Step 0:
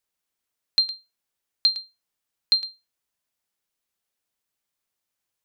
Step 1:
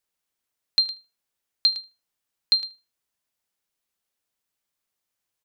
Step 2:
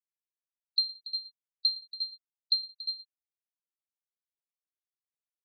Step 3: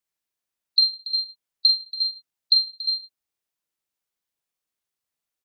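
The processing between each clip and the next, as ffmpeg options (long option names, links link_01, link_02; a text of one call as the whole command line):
ffmpeg -i in.wav -filter_complex "[0:a]asplit=2[link_01][link_02];[link_02]adelay=77,lowpass=frequency=2300:poles=1,volume=-20dB,asplit=2[link_03][link_04];[link_04]adelay=77,lowpass=frequency=2300:poles=1,volume=0.33,asplit=2[link_05][link_06];[link_06]adelay=77,lowpass=frequency=2300:poles=1,volume=0.33[link_07];[link_01][link_03][link_05][link_07]amix=inputs=4:normalize=0" out.wav
ffmpeg -i in.wav -af "afftfilt=real='re*gte(hypot(re,im),0.112)':imag='im*gte(hypot(re,im),0.112)':win_size=1024:overlap=0.75,aecho=1:1:61|282|353|365:0.251|0.15|0.266|0.211,volume=-6.5dB" out.wav
ffmpeg -i in.wav -filter_complex "[0:a]asplit=2[link_01][link_02];[link_02]adelay=42,volume=-6dB[link_03];[link_01][link_03]amix=inputs=2:normalize=0,volume=8.5dB" out.wav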